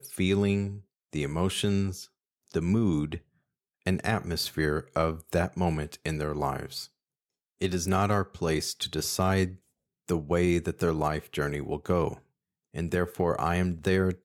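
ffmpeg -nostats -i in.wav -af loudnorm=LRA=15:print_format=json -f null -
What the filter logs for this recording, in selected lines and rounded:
"input_i" : "-29.0",
"input_tp" : "-11.6",
"input_lra" : "1.7",
"input_thresh" : "-39.4",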